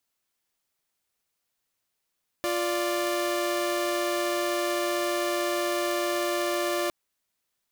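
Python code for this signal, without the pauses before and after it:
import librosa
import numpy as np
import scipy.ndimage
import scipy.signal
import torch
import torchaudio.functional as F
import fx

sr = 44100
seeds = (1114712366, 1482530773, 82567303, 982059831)

y = fx.chord(sr, length_s=4.46, notes=(65, 74), wave='saw', level_db=-25.5)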